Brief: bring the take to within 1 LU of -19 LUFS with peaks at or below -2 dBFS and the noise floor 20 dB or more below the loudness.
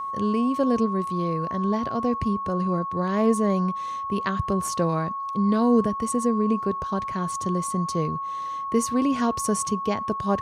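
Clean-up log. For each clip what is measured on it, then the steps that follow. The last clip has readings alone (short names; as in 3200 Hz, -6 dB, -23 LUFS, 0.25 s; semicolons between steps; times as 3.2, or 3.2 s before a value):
steady tone 1100 Hz; tone level -28 dBFS; loudness -25.0 LUFS; peak -9.5 dBFS; loudness target -19.0 LUFS
-> notch 1100 Hz, Q 30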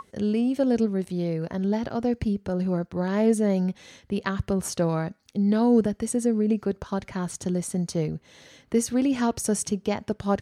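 steady tone none; loudness -26.0 LUFS; peak -10.5 dBFS; loudness target -19.0 LUFS
-> gain +7 dB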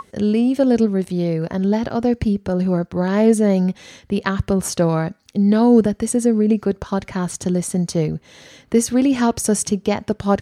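loudness -19.0 LUFS; peak -3.5 dBFS; noise floor -54 dBFS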